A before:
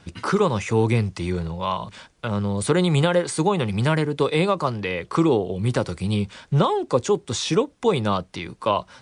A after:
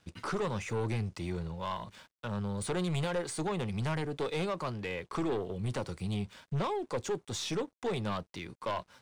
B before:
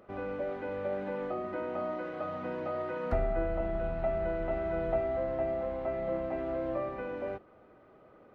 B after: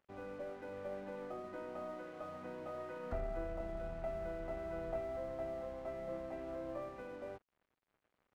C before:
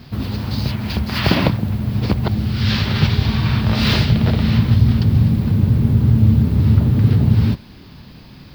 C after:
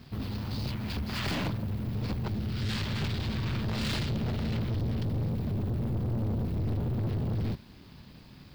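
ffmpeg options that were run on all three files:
ffmpeg -i in.wav -af "aeval=exprs='(tanh(8.91*val(0)+0.25)-tanh(0.25))/8.91':channel_layout=same,aeval=exprs='sgn(val(0))*max(abs(val(0))-0.002,0)':channel_layout=same,volume=-8.5dB" out.wav

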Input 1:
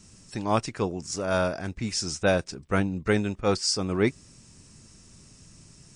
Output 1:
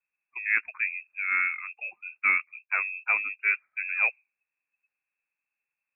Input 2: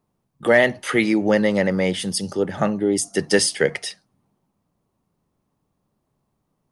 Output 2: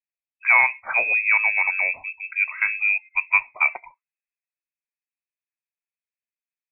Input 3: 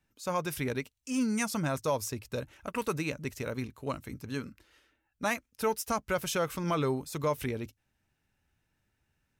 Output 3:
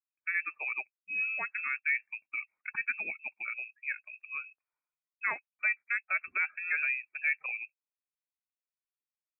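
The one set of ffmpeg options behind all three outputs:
ffmpeg -i in.wav -filter_complex "[0:a]acrossover=split=220 2000:gain=0.0891 1 0.2[link_01][link_02][link_03];[link_01][link_02][link_03]amix=inputs=3:normalize=0,afftdn=noise_reduction=26:noise_floor=-41,lowpass=frequency=2400:width_type=q:width=0.5098,lowpass=frequency=2400:width_type=q:width=0.6013,lowpass=frequency=2400:width_type=q:width=0.9,lowpass=frequency=2400:width_type=q:width=2.563,afreqshift=-2800" out.wav

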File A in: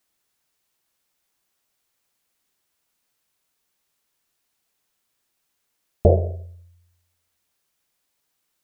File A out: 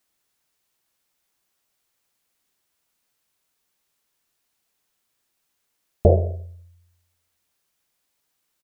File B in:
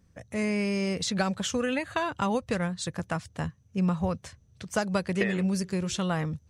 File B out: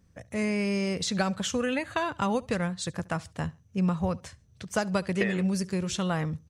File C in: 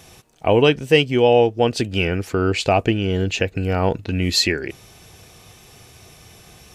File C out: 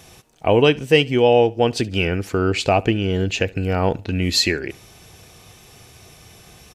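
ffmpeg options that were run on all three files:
ffmpeg -i in.wav -af "aecho=1:1:70|140:0.0668|0.0194" out.wav

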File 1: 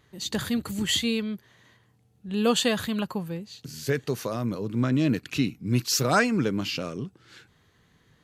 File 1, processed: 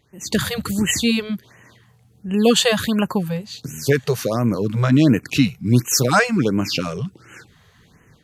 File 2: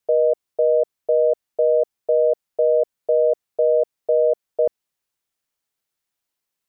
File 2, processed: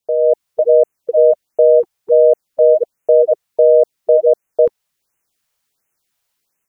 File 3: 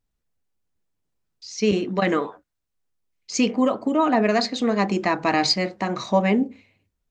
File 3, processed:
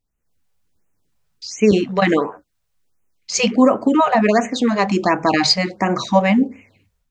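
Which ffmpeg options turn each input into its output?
ffmpeg -i in.wav -af "dynaudnorm=framelen=170:gausssize=3:maxgain=10dB,afftfilt=real='re*(1-between(b*sr/1024,260*pow(4400/260,0.5+0.5*sin(2*PI*1.4*pts/sr))/1.41,260*pow(4400/260,0.5+0.5*sin(2*PI*1.4*pts/sr))*1.41))':imag='im*(1-between(b*sr/1024,260*pow(4400/260,0.5+0.5*sin(2*PI*1.4*pts/sr))/1.41,260*pow(4400/260,0.5+0.5*sin(2*PI*1.4*pts/sr))*1.41))':win_size=1024:overlap=0.75" out.wav

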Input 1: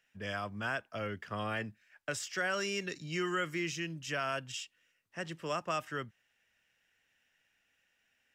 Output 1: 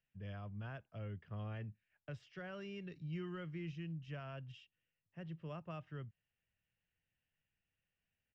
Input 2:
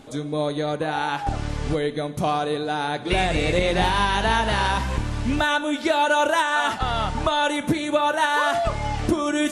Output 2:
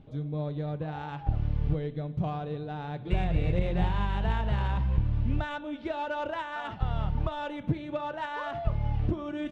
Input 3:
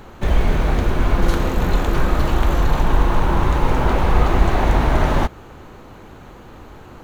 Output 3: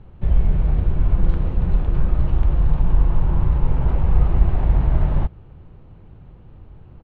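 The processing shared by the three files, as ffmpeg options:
ffmpeg -i in.wav -filter_complex "[0:a]firequalizer=gain_entry='entry(160,0);entry(230,-11);entry(1400,-10);entry(2800,-4);entry(7900,-29)':delay=0.05:min_phase=1,asplit=2[link_01][link_02];[link_02]adynamicsmooth=sensitivity=2:basefreq=1000,volume=-2dB[link_03];[link_01][link_03]amix=inputs=2:normalize=0,tiltshelf=frequency=1300:gain=4,volume=-8.5dB" out.wav

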